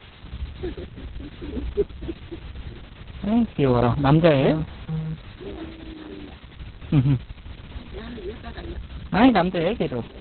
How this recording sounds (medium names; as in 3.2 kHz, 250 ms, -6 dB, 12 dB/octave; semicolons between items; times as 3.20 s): a buzz of ramps at a fixed pitch in blocks of 8 samples; random-step tremolo 1.4 Hz; a quantiser's noise floor 8-bit, dither triangular; Opus